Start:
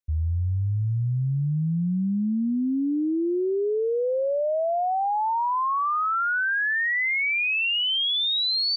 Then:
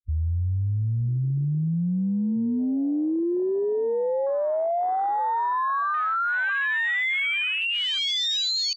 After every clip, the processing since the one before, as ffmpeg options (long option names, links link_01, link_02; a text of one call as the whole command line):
ffmpeg -i in.wav -af "afwtdn=0.0631" out.wav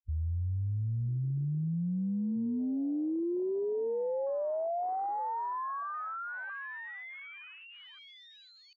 ffmpeg -i in.wav -af "lowpass=1000,volume=-7.5dB" out.wav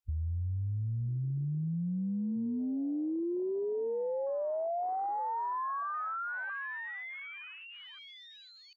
ffmpeg -i in.wav -af "acompressor=threshold=-34dB:ratio=6,volume=2.5dB" out.wav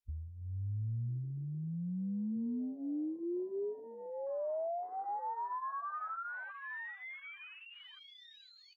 ffmpeg -i in.wav -af "flanger=delay=4.2:depth=6.3:regen=-31:speed=0.4:shape=triangular,volume=-1dB" out.wav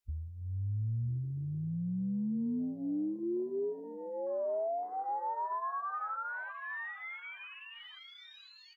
ffmpeg -i in.wav -af "aecho=1:1:941|1882:0.15|0.0269,volume=3dB" out.wav